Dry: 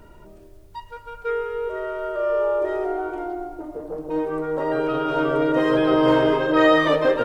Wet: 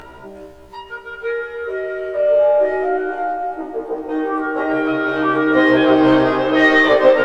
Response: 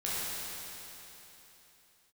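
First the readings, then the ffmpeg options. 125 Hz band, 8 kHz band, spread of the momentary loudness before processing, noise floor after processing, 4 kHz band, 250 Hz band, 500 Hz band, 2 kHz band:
+1.0 dB, no reading, 16 LU, -39 dBFS, +4.5 dB, +5.0 dB, +5.0 dB, +9.0 dB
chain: -filter_complex "[0:a]acompressor=mode=upward:threshold=0.02:ratio=2.5,asplit=2[s0][s1];[s1]highpass=f=720:p=1,volume=4.47,asoftclip=type=tanh:threshold=0.531[s2];[s0][s2]amix=inputs=2:normalize=0,lowpass=f=2400:p=1,volume=0.501,asplit=2[s3][s4];[1:a]atrim=start_sample=2205,asetrate=24696,aresample=44100[s5];[s4][s5]afir=irnorm=-1:irlink=0,volume=0.106[s6];[s3][s6]amix=inputs=2:normalize=0,afftfilt=real='re*1.73*eq(mod(b,3),0)':imag='im*1.73*eq(mod(b,3),0)':win_size=2048:overlap=0.75,volume=1.68"

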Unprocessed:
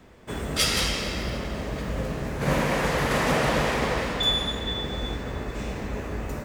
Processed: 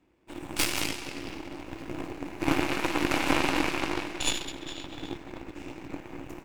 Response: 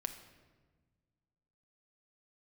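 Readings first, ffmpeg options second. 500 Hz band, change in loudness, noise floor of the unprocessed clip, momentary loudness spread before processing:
-7.5 dB, -4.5 dB, -36 dBFS, 10 LU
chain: -af "aeval=exprs='0.447*(cos(1*acos(clip(val(0)/0.447,-1,1)))-cos(1*PI/2))+0.0112*(cos(3*acos(clip(val(0)/0.447,-1,1)))-cos(3*PI/2))+0.126*(cos(6*acos(clip(val(0)/0.447,-1,1)))-cos(6*PI/2))+0.0708*(cos(7*acos(clip(val(0)/0.447,-1,1)))-cos(7*PI/2))+0.0178*(cos(8*acos(clip(val(0)/0.447,-1,1)))-cos(8*PI/2))':c=same,superequalizer=6b=3.55:9b=1.41:12b=1.78,volume=0.596"

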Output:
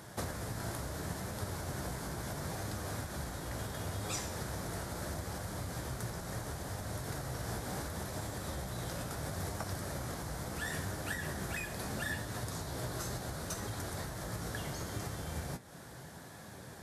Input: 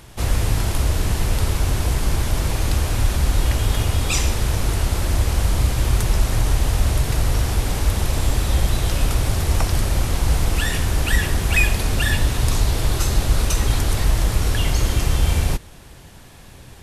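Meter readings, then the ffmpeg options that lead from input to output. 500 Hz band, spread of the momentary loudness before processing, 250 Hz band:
-12.5 dB, 2 LU, -13.5 dB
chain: -af "equalizer=f=160:t=o:w=0.67:g=4,equalizer=f=630:t=o:w=0.67:g=4,equalizer=f=1600:t=o:w=0.67:g=5,acompressor=threshold=0.0562:ratio=6,flanger=delay=9.6:depth=7.9:regen=59:speed=0.73:shape=sinusoidal,highpass=120,equalizer=f=2700:t=o:w=0.62:g=-10,volume=0.891"

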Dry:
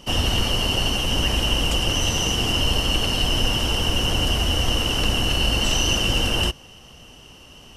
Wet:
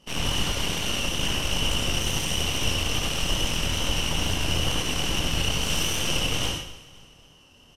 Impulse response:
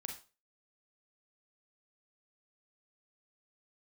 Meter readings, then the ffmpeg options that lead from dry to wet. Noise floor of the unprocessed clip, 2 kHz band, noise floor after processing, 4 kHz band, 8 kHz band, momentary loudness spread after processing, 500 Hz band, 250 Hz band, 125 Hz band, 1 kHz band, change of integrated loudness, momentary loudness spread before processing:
-46 dBFS, -4.0 dB, -54 dBFS, -5.0 dB, -1.0 dB, 2 LU, -5.0 dB, -5.0 dB, -5.0 dB, -4.5 dB, -4.5 dB, 2 LU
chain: -filter_complex "[0:a]flanger=delay=20:depth=5.6:speed=2.3,aeval=exprs='0.299*(cos(1*acos(clip(val(0)/0.299,-1,1)))-cos(1*PI/2))+0.119*(cos(3*acos(clip(val(0)/0.299,-1,1)))-cos(3*PI/2))+0.0531*(cos(4*acos(clip(val(0)/0.299,-1,1)))-cos(4*PI/2))+0.0376*(cos(5*acos(clip(val(0)/0.299,-1,1)))-cos(5*PI/2))+0.0237*(cos(8*acos(clip(val(0)/0.299,-1,1)))-cos(8*PI/2))':c=same,aecho=1:1:262|524|786:0.112|0.0494|0.0217[s0];[1:a]atrim=start_sample=2205,asetrate=26901,aresample=44100[s1];[s0][s1]afir=irnorm=-1:irlink=0"

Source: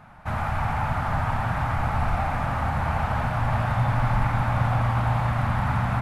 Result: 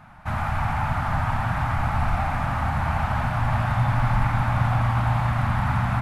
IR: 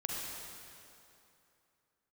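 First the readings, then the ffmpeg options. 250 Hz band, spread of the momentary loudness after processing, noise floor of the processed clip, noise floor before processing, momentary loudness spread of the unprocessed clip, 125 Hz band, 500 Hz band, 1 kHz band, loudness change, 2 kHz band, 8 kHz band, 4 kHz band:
+1.0 dB, 3 LU, -28 dBFS, -29 dBFS, 3 LU, +1.5 dB, -1.5 dB, +0.5 dB, +1.0 dB, +1.5 dB, no reading, +1.5 dB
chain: -af "equalizer=f=460:w=2.3:g=-9,volume=1.19"

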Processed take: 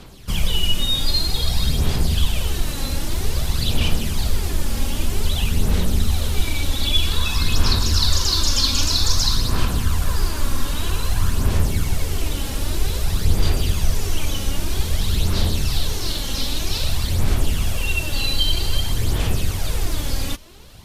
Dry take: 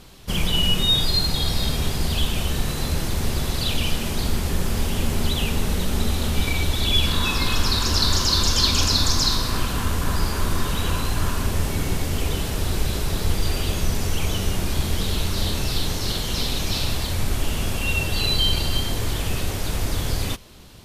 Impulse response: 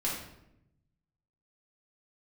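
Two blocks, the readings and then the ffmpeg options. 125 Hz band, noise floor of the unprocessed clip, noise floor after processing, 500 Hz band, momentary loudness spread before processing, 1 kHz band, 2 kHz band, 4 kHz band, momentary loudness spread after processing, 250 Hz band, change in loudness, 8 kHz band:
+2.0 dB, -27 dBFS, -26 dBFS, -1.5 dB, 8 LU, -2.0 dB, -1.0 dB, 0.0 dB, 7 LU, -1.0 dB, +1.0 dB, +1.0 dB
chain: -filter_complex "[0:a]acrossover=split=140|3000[s0][s1][s2];[s1]acompressor=threshold=0.0224:ratio=2[s3];[s0][s3][s2]amix=inputs=3:normalize=0,aphaser=in_gain=1:out_gain=1:delay=3.7:decay=0.47:speed=0.52:type=sinusoidal"

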